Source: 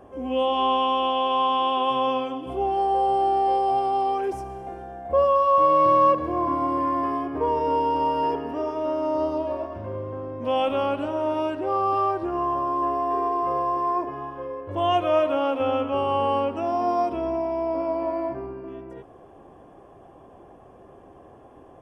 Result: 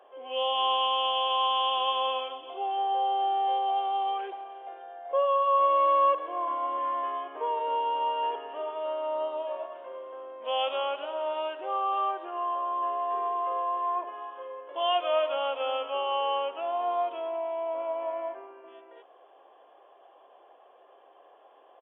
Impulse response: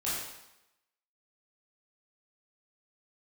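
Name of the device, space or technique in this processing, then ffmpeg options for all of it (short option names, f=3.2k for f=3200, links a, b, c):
musical greeting card: -af "aresample=8000,aresample=44100,highpass=f=510:w=0.5412,highpass=f=510:w=1.3066,equalizer=f=3.1k:t=o:w=0.31:g=9.5,volume=-4.5dB"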